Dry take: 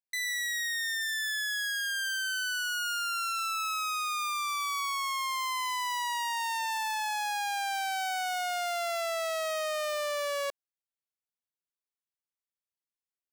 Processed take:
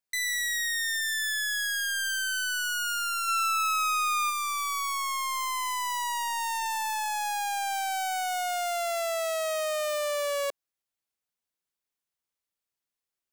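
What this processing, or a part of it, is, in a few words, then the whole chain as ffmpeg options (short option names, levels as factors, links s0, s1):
one-band saturation: -filter_complex "[0:a]acrossover=split=490|4100[s0][s1][s2];[s1]asoftclip=type=tanh:threshold=0.0224[s3];[s0][s3][s2]amix=inputs=3:normalize=0,asplit=3[s4][s5][s6];[s4]afade=t=out:st=3.27:d=0.02[s7];[s5]equalizer=f=1800:w=0.71:g=5.5,afade=t=in:st=3.27:d=0.02,afade=t=out:st=4.29:d=0.02[s8];[s6]afade=t=in:st=4.29:d=0.02[s9];[s7][s8][s9]amix=inputs=3:normalize=0,volume=1.78"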